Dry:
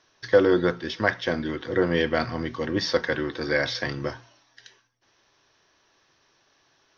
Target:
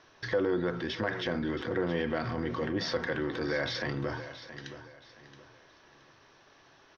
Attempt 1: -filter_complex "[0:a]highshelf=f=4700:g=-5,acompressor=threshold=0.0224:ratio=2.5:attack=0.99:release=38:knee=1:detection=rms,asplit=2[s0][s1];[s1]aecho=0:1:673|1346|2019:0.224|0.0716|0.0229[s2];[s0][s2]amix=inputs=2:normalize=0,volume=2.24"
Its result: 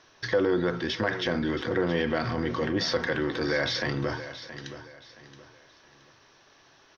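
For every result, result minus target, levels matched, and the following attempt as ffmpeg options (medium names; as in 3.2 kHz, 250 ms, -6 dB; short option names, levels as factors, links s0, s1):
compression: peak gain reduction -4 dB; 8 kHz band +3.0 dB
-filter_complex "[0:a]highshelf=f=4700:g=-5,acompressor=threshold=0.01:ratio=2.5:attack=0.99:release=38:knee=1:detection=rms,asplit=2[s0][s1];[s1]aecho=0:1:673|1346|2019:0.224|0.0716|0.0229[s2];[s0][s2]amix=inputs=2:normalize=0,volume=2.24"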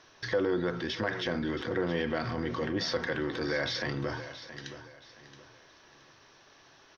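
8 kHz band +3.5 dB
-filter_complex "[0:a]highshelf=f=4700:g=-14,acompressor=threshold=0.01:ratio=2.5:attack=0.99:release=38:knee=1:detection=rms,asplit=2[s0][s1];[s1]aecho=0:1:673|1346|2019:0.224|0.0716|0.0229[s2];[s0][s2]amix=inputs=2:normalize=0,volume=2.24"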